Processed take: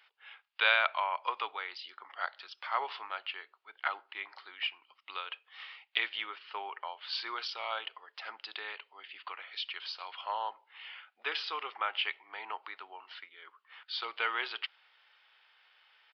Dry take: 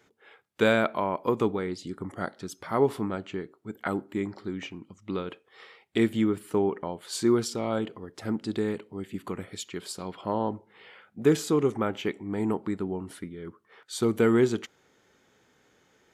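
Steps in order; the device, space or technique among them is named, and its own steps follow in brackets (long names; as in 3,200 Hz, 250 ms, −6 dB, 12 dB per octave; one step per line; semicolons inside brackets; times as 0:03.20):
musical greeting card (downsampling to 11,025 Hz; high-pass filter 850 Hz 24 dB per octave; parametric band 2,800 Hz +9.5 dB 0.55 octaves)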